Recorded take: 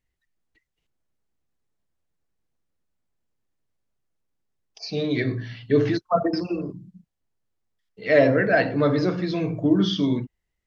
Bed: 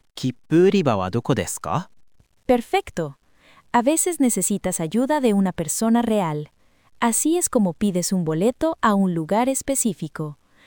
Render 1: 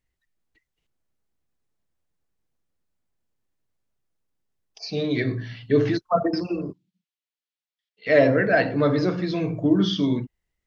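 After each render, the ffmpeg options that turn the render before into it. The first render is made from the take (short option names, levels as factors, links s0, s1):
-filter_complex "[0:a]asettb=1/sr,asplit=3[s0][s1][s2];[s0]atrim=end=6.734[s3];[s1]atrim=start=6.73:end=8.07,asetpts=PTS-STARTPTS,afade=t=in:d=0.004:c=qsin,afade=t=out:st=1.336:d=0.004:c=qsin,bandpass=f=3300:t=q:w=1.4[s4];[s2]atrim=start=8.066[s5];[s3][s4]acrossfade=d=0.004:c1=hsin:c2=qsin[s6];[s6][s5]acrossfade=d=0.004:c1=qsin:c2=hsin"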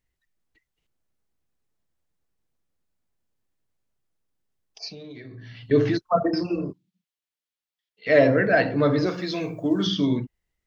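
-filter_complex "[0:a]asettb=1/sr,asplit=3[s0][s1][s2];[s0]atrim=end=4.884[s3];[s1]atrim=start=4.88:end=5.71,asetpts=PTS-STARTPTS,afade=t=in:d=0.004:c=qsin,afade=t=out:st=0.826:d=0.004:c=qsin,acompressor=threshold=0.0126:ratio=8:attack=3.2:release=140:knee=1:detection=peak[s4];[s2]atrim=start=5.706[s5];[s3][s4]acrossfade=d=0.004:c1=hsin:c2=qsin[s6];[s6][s5]acrossfade=d=0.004:c1=qsin:c2=hsin,asettb=1/sr,asplit=3[s7][s8][s9];[s7]atrim=end=6.254[s10];[s8]atrim=start=6.25:end=6.69,asetpts=PTS-STARTPTS,afade=t=in:d=0.004:c=qsin,afade=t=out:st=0.436:d=0.004:c=qsin,asplit=2[s11][s12];[s12]adelay=29,volume=0.316[s13];[s11][s13]amix=inputs=2:normalize=0,atrim=end_sample=19404[s14];[s9]atrim=start=6.686[s15];[s10][s14]acrossfade=d=0.004:c1=hsin:c2=qsin[s16];[s16][s15]acrossfade=d=0.004:c1=qsin:c2=hsin,asettb=1/sr,asplit=3[s17][s18][s19];[s17]atrim=end=9.064[s20];[s18]atrim=start=9.06:end=9.87,asetpts=PTS-STARTPTS,afade=t=in:d=0.004:c=qsin,afade=t=out:st=0.806:d=0.004:c=qsin,aemphasis=mode=production:type=bsi[s21];[s19]atrim=start=9.866[s22];[s20][s21]acrossfade=d=0.004:c1=hsin:c2=qsin[s23];[s23][s22]acrossfade=d=0.004:c1=qsin:c2=hsin"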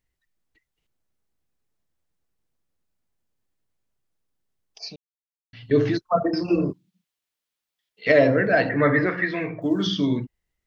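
-filter_complex "[0:a]asettb=1/sr,asplit=3[s0][s1][s2];[s0]atrim=end=6.484[s3];[s1]atrim=start=6.48:end=8.12,asetpts=PTS-STARTPTS,afade=t=in:d=0.004:c=qsin,afade=t=out:st=1.636:d=0.004:c=qsin,acontrast=51[s4];[s2]atrim=start=8.116[s5];[s3][s4]acrossfade=d=0.004:c1=hsin:c2=qsin[s6];[s6][s5]acrossfade=d=0.004:c1=qsin:c2=hsin,asettb=1/sr,asplit=3[s7][s8][s9];[s7]atrim=end=8.694[s10];[s8]atrim=start=8.69:end=9.62,asetpts=PTS-STARTPTS,afade=t=in:d=0.004:c=qsin,afade=t=out:st=0.926:d=0.004:c=qsin,lowpass=f=1900:t=q:w=9.7[s11];[s9]atrim=start=9.616[s12];[s10][s11]acrossfade=d=0.004:c1=hsin:c2=qsin[s13];[s13][s12]acrossfade=d=0.004:c1=qsin:c2=hsin,asplit=3[s14][s15][s16];[s14]atrim=end=4.96,asetpts=PTS-STARTPTS,afade=t=out:st=4.956:d=0.004:c=hsin[s17];[s15]atrim=start=4.96:end=5.53,asetpts=PTS-STARTPTS,volume=0[s18];[s16]atrim=start=5.53,asetpts=PTS-STARTPTS,afade=t=in:d=0.004:c=hsin[s19];[s17][s18][s19]concat=n=3:v=0:a=1"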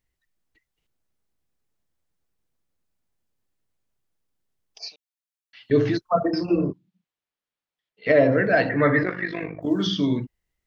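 -filter_complex "[0:a]asettb=1/sr,asplit=3[s0][s1][s2];[s0]atrim=end=4.884[s3];[s1]atrim=start=4.88:end=5.7,asetpts=PTS-STARTPTS,afade=t=in:d=0.004:c=qsin,afade=t=out:st=0.816:d=0.004:c=qsin,highpass=1100[s4];[s2]atrim=start=5.696[s5];[s3][s4]acrossfade=d=0.004:c1=hsin:c2=qsin[s6];[s6][s5]acrossfade=d=0.004:c1=qsin:c2=hsin,asettb=1/sr,asplit=3[s7][s8][s9];[s7]atrim=end=6.454[s10];[s8]atrim=start=6.45:end=8.32,asetpts=PTS-STARTPTS,afade=t=in:d=0.004:c=qsin,afade=t=out:st=1.866:d=0.004:c=qsin,lowpass=f=1800:p=1[s11];[s9]atrim=start=8.316[s12];[s10][s11]acrossfade=d=0.004:c1=hsin:c2=qsin[s13];[s13][s12]acrossfade=d=0.004:c1=qsin:c2=hsin,asettb=1/sr,asplit=3[s14][s15][s16];[s14]atrim=end=9.034[s17];[s15]atrim=start=9.03:end=9.68,asetpts=PTS-STARTPTS,afade=t=in:d=0.004:c=qsin,afade=t=out:st=0.646:d=0.004:c=qsin,tremolo=f=50:d=0.75[s18];[s16]atrim=start=9.676[s19];[s17][s18]acrossfade=d=0.004:c1=hsin:c2=qsin[s20];[s20][s19]acrossfade=d=0.004:c1=qsin:c2=hsin"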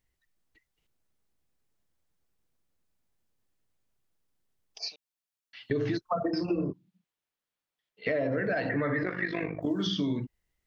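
-af "alimiter=limit=0.211:level=0:latency=1:release=50,acompressor=threshold=0.0447:ratio=4"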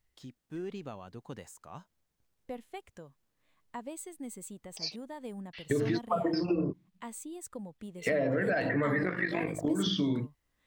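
-filter_complex "[1:a]volume=0.0668[s0];[0:a][s0]amix=inputs=2:normalize=0"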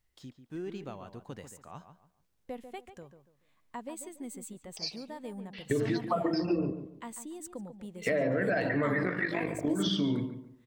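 -filter_complex "[0:a]asplit=2[s0][s1];[s1]adelay=143,lowpass=f=2200:p=1,volume=0.335,asplit=2[s2][s3];[s3]adelay=143,lowpass=f=2200:p=1,volume=0.3,asplit=2[s4][s5];[s5]adelay=143,lowpass=f=2200:p=1,volume=0.3[s6];[s0][s2][s4][s6]amix=inputs=4:normalize=0"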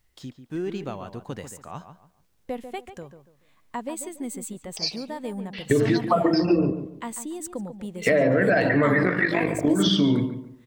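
-af "volume=2.82"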